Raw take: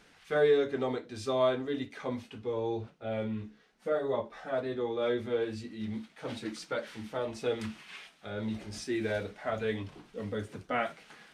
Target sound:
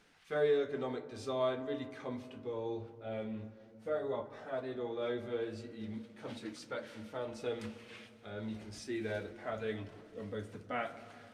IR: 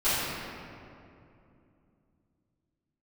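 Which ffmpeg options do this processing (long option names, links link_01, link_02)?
-filter_complex "[0:a]asplit=2[link_01][link_02];[1:a]atrim=start_sample=2205,lowpass=2200[link_03];[link_02][link_03]afir=irnorm=-1:irlink=0,volume=-25.5dB[link_04];[link_01][link_04]amix=inputs=2:normalize=0,volume=-6.5dB"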